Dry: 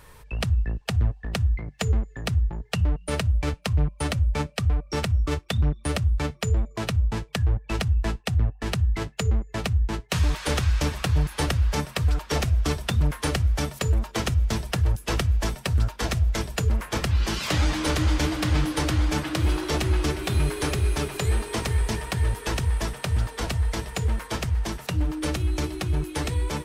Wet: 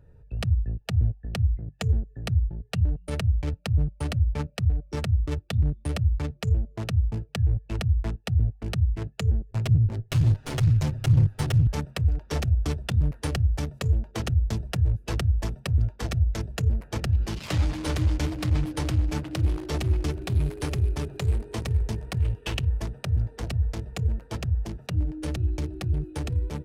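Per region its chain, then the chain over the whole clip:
9.51–11.67 s: comb filter that takes the minimum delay 7.8 ms + peaking EQ 110 Hz +7.5 dB 1.1 oct
22.18–22.69 s: companding laws mixed up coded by A + peaking EQ 2.9 kHz +11 dB 0.59 oct
whole clip: local Wiener filter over 41 samples; peaking EQ 100 Hz +7 dB 1.1 oct; trim -4.5 dB

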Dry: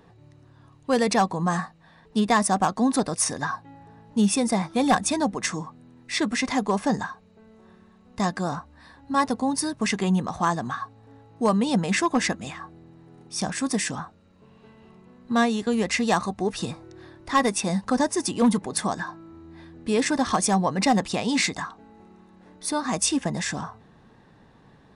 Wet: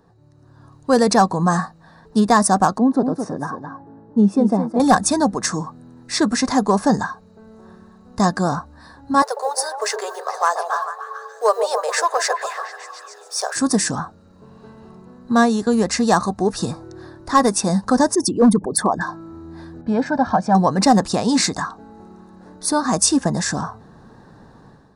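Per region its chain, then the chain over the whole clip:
2.78–4.80 s: band-pass filter 330 Hz, Q 0.75 + delay 216 ms -8 dB
9.22–13.56 s: companding laws mixed up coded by mu + rippled Chebyshev high-pass 410 Hz, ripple 3 dB + repeats whose band climbs or falls 144 ms, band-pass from 560 Hz, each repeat 0.7 oct, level -3.5 dB
18.15–19.01 s: resonances exaggerated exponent 2 + overload inside the chain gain 14.5 dB
19.81–20.55 s: high-pass 180 Hz 6 dB/octave + tape spacing loss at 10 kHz 38 dB + comb 1.3 ms, depth 72%
whole clip: high-order bell 2.6 kHz -11.5 dB 1 oct; level rider gain up to 11 dB; trim -2 dB

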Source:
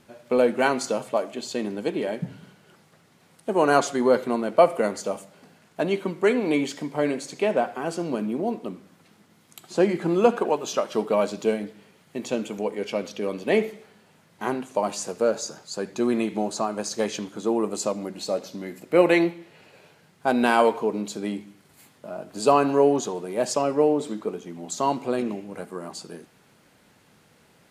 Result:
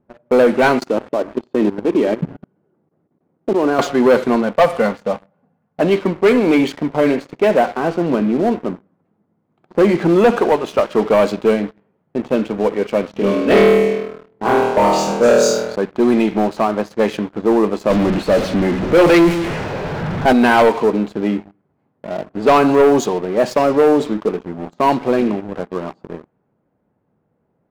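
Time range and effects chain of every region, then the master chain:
0.79–3.79 s: high-pass 65 Hz 24 dB/octave + level held to a coarse grid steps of 15 dB + peaking EQ 320 Hz +8.5 dB 0.99 oct
4.42–5.81 s: peaking EQ 380 Hz -9.5 dB 0.39 oct + comb of notches 320 Hz
13.11–15.76 s: LFO notch saw up 6.6 Hz 300–2700 Hz + flutter echo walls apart 4.3 m, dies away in 1.1 s
17.90–20.33 s: jump at every zero crossing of -27.5 dBFS + bass shelf 120 Hz +9.5 dB
whole clip: level-controlled noise filter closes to 750 Hz, open at -16 dBFS; treble shelf 6.3 kHz -7 dB; waveshaping leveller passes 3

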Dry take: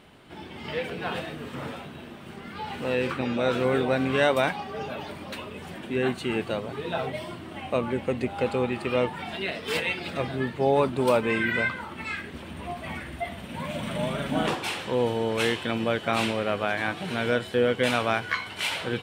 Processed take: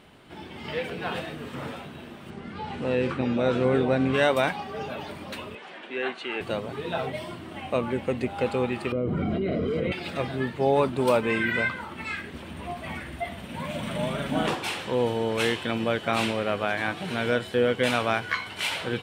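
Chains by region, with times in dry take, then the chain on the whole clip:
2.30–4.14 s: low-pass 8.8 kHz + tilt shelf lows +3.5 dB, about 680 Hz
5.55–6.41 s: band-pass 360–3100 Hz + tilt EQ +2 dB/octave
8.92–9.92 s: boxcar filter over 50 samples + level flattener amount 100%
whole clip: none

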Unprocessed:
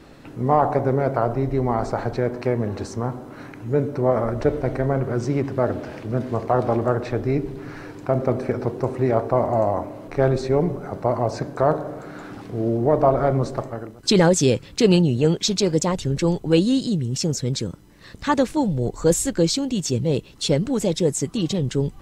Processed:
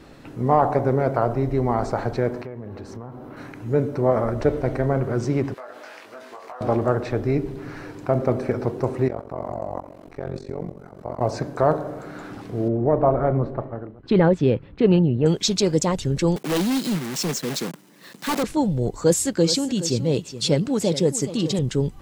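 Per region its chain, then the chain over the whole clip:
2.42–3.37 s: peaking EQ 7.5 kHz -11.5 dB 1.4 oct + compression 4:1, threshold -33 dBFS
5.54–6.61 s: high-pass 970 Hz + compression 5:1, threshold -36 dBFS + doubling 20 ms -3.5 dB
9.08–11.21 s: level held to a coarse grid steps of 13 dB + AM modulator 46 Hz, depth 95% + delay 89 ms -14.5 dB
12.68–15.26 s: distance through air 480 m + tape noise reduction on one side only decoder only
16.36–18.44 s: block-companded coder 3-bit + steep high-pass 160 Hz + hard clipper -19 dBFS
18.98–21.59 s: high-pass 96 Hz + peaking EQ 4.8 kHz +4.5 dB 0.22 oct + delay 421 ms -13 dB
whole clip: none

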